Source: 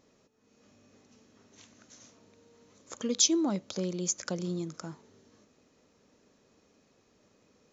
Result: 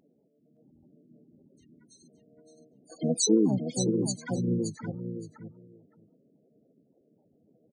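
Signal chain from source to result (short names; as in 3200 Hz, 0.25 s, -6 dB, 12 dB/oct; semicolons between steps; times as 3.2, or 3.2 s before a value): loudest bins only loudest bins 4; feedback echo 0.568 s, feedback 15%, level -7.5 dB; harmoniser -7 st -4 dB, +5 st -6 dB, +7 st -16 dB; gain +3.5 dB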